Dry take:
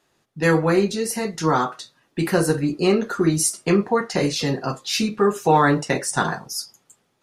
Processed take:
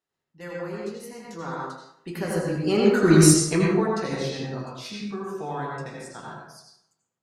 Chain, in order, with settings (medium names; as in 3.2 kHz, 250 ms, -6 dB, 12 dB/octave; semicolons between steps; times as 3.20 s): Doppler pass-by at 3.16 s, 18 m/s, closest 3.5 m; in parallel at -11 dB: one-sided clip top -21 dBFS; on the sum: reverberation RT60 0.75 s, pre-delay 73 ms, DRR -3 dB